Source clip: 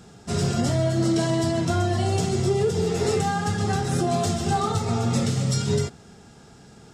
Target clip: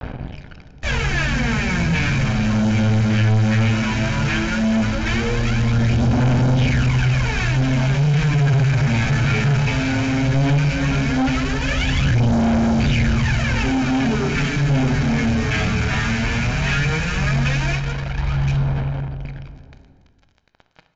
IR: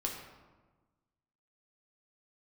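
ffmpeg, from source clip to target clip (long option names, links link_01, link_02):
-filter_complex "[0:a]equalizer=frequency=110:width=0.7:gain=-12,asplit=2[link_01][link_02];[link_02]adelay=338.2,volume=-11dB,highshelf=frequency=4000:gain=-7.61[link_03];[link_01][link_03]amix=inputs=2:normalize=0,aphaser=in_gain=1:out_gain=1:delay=3.1:decay=0.79:speed=0.48:type=sinusoidal,acrossover=split=210|500|1200|3800[link_04][link_05][link_06][link_07][link_08];[link_04]acompressor=threshold=-38dB:ratio=4[link_09];[link_05]acompressor=threshold=-23dB:ratio=4[link_10];[link_06]acompressor=threshold=-22dB:ratio=4[link_11];[link_07]acompressor=threshold=-43dB:ratio=4[link_12];[link_08]acompressor=threshold=-32dB:ratio=4[link_13];[link_09][link_10][link_11][link_12][link_13]amix=inputs=5:normalize=0,acrusher=bits=5:mix=0:aa=0.5,asplit=2[link_14][link_15];[1:a]atrim=start_sample=2205,afade=type=out:start_time=0.41:duration=0.01,atrim=end_sample=18522[link_16];[link_15][link_16]afir=irnorm=-1:irlink=0,volume=-4dB[link_17];[link_14][link_17]amix=inputs=2:normalize=0,asoftclip=type=tanh:threshold=-22dB,asetrate=14597,aresample=44100,aecho=1:1:1.3:0.37,volume=7dB"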